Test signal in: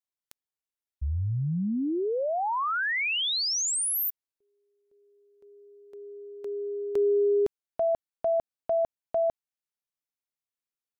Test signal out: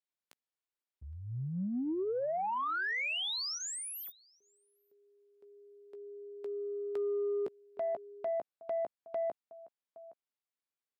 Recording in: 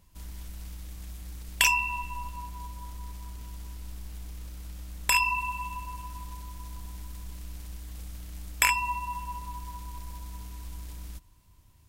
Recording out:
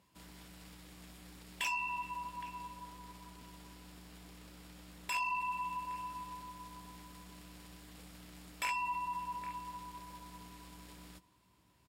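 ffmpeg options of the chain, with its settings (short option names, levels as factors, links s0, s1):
-filter_complex "[0:a]highpass=190,bandreject=f=6100:w=9.5,asplit=2[s0][s1];[s1]adelay=16,volume=0.266[s2];[s0][s2]amix=inputs=2:normalize=0,asplit=2[s3][s4];[s4]adelay=816.3,volume=0.0708,highshelf=f=4000:g=-18.4[s5];[s3][s5]amix=inputs=2:normalize=0,asoftclip=type=tanh:threshold=0.106,acompressor=threshold=0.0282:ratio=3:attack=0.69:release=49:knee=6:detection=rms,highshelf=f=8100:g=-12,volume=0.841"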